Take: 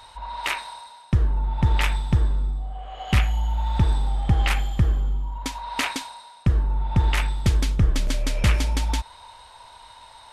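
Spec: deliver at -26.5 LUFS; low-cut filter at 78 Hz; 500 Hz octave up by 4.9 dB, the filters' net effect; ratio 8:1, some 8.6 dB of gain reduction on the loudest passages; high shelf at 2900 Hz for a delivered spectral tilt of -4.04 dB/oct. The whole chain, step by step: HPF 78 Hz; bell 500 Hz +6 dB; high shelf 2900 Hz +5.5 dB; compressor 8:1, threshold -24 dBFS; gain +4.5 dB

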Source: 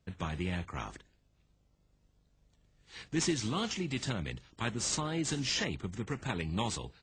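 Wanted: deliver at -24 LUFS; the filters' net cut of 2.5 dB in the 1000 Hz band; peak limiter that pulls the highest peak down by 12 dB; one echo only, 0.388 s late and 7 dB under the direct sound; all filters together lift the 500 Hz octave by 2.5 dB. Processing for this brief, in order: bell 500 Hz +4.5 dB; bell 1000 Hz -4.5 dB; limiter -28 dBFS; echo 0.388 s -7 dB; gain +14 dB

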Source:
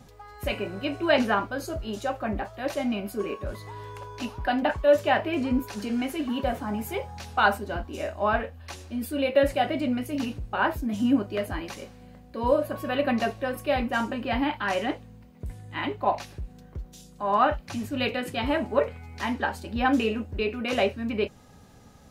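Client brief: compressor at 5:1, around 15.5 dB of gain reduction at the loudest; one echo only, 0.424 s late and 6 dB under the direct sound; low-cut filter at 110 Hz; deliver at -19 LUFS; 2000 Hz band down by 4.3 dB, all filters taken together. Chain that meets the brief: HPF 110 Hz; bell 2000 Hz -6 dB; compressor 5:1, threshold -34 dBFS; echo 0.424 s -6 dB; gain +18.5 dB

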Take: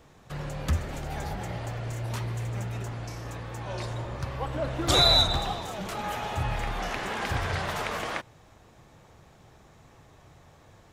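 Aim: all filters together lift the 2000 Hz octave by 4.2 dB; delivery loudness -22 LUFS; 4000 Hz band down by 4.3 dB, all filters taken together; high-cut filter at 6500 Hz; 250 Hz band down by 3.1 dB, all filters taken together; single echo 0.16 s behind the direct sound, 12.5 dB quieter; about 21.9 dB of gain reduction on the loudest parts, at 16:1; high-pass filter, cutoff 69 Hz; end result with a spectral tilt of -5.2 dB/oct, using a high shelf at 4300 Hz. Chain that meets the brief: HPF 69 Hz; LPF 6500 Hz; bell 250 Hz -5 dB; bell 2000 Hz +7 dB; bell 4000 Hz -3.5 dB; high shelf 4300 Hz -4.5 dB; compressor 16:1, threshold -41 dBFS; echo 0.16 s -12.5 dB; gain +23.5 dB

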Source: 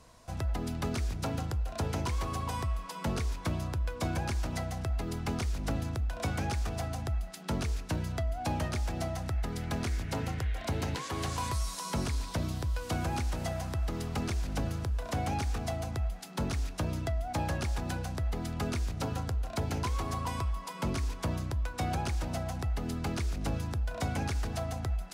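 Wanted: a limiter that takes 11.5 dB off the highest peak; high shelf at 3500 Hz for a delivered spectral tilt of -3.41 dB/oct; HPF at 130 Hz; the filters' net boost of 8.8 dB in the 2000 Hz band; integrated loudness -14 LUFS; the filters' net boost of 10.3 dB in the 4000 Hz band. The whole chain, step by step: HPF 130 Hz; bell 2000 Hz +7.5 dB; high shelf 3500 Hz +7 dB; bell 4000 Hz +6 dB; gain +22.5 dB; limiter -3.5 dBFS

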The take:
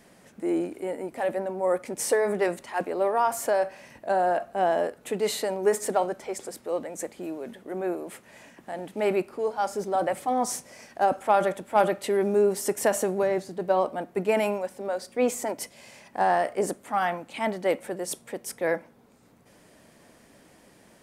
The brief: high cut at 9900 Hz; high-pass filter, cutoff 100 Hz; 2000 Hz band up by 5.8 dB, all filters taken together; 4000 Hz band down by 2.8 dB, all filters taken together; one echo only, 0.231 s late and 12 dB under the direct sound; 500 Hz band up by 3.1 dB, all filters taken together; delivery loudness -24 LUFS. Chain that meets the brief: HPF 100 Hz; LPF 9900 Hz; bell 500 Hz +3.5 dB; bell 2000 Hz +8.5 dB; bell 4000 Hz -7.5 dB; echo 0.231 s -12 dB; gain +0.5 dB

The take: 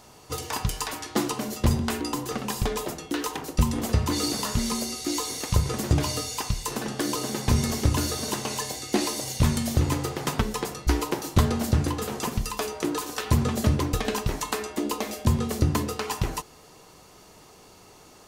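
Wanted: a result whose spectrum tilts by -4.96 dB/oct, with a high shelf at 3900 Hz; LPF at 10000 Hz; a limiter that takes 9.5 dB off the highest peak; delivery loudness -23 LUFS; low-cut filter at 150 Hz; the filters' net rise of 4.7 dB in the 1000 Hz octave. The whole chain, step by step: HPF 150 Hz; LPF 10000 Hz; bell 1000 Hz +6 dB; high shelf 3900 Hz -8.5 dB; gain +7 dB; limiter -9.5 dBFS

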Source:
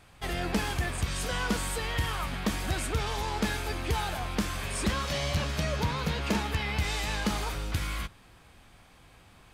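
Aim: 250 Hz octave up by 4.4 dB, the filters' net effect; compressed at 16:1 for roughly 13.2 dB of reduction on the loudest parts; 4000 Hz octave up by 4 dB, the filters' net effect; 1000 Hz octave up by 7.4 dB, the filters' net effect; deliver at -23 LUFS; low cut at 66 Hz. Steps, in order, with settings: HPF 66 Hz; bell 250 Hz +5.5 dB; bell 1000 Hz +8.5 dB; bell 4000 Hz +4.5 dB; compressor 16:1, threshold -32 dBFS; gain +13 dB

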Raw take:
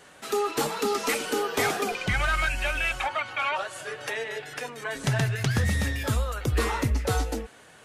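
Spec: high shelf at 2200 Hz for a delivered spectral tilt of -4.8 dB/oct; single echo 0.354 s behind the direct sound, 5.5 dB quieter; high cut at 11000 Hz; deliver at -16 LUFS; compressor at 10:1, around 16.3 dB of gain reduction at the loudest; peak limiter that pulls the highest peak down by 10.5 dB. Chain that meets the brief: LPF 11000 Hz; high shelf 2200 Hz -6 dB; compressor 10:1, threshold -38 dBFS; limiter -36 dBFS; echo 0.354 s -5.5 dB; gain +27.5 dB

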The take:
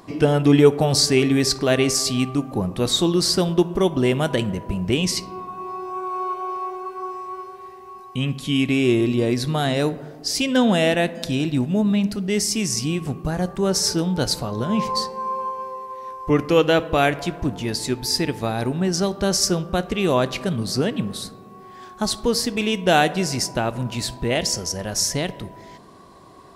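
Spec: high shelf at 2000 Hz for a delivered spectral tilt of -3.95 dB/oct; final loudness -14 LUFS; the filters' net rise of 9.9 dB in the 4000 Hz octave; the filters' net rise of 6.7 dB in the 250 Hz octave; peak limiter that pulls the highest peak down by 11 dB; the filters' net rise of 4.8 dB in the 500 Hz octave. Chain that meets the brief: bell 250 Hz +7.5 dB; bell 500 Hz +3 dB; high shelf 2000 Hz +5.5 dB; bell 4000 Hz +7 dB; gain +3.5 dB; limiter -3.5 dBFS

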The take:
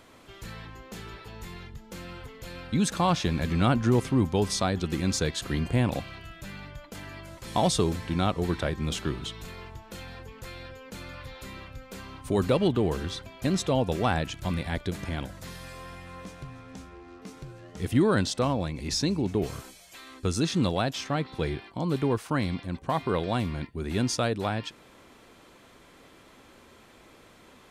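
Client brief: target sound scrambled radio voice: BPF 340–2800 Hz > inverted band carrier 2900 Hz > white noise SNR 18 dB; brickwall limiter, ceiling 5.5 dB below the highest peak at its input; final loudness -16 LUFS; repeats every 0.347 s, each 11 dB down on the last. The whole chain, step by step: limiter -17 dBFS; BPF 340–2800 Hz; feedback echo 0.347 s, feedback 28%, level -11 dB; inverted band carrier 2900 Hz; white noise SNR 18 dB; gain +15 dB

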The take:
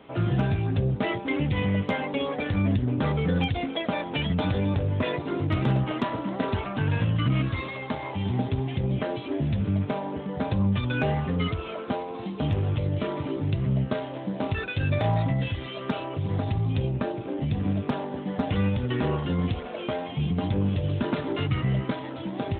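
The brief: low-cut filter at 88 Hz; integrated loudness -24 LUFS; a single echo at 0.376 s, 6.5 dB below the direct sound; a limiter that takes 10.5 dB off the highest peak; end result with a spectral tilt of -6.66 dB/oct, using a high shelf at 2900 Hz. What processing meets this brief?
HPF 88 Hz; high shelf 2900 Hz -6 dB; limiter -22.5 dBFS; echo 0.376 s -6.5 dB; gain +6.5 dB

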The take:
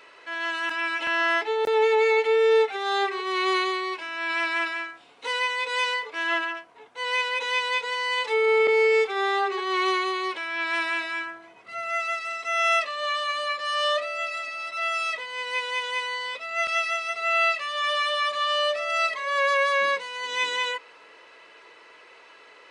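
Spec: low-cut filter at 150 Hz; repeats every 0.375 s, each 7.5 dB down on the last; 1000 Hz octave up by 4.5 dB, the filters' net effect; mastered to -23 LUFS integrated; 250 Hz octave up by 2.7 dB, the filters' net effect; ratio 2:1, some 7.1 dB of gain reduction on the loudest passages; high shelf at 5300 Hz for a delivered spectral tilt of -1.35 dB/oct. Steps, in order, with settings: HPF 150 Hz; bell 250 Hz +5 dB; bell 1000 Hz +5 dB; high shelf 5300 Hz +5 dB; compressor 2:1, threshold -28 dBFS; feedback echo 0.375 s, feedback 42%, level -7.5 dB; gain +3.5 dB

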